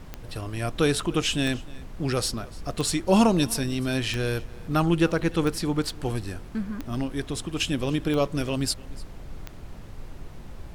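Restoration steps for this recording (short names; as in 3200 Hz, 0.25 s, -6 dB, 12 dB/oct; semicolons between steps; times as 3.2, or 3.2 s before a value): de-click; noise print and reduce 30 dB; inverse comb 0.297 s -22 dB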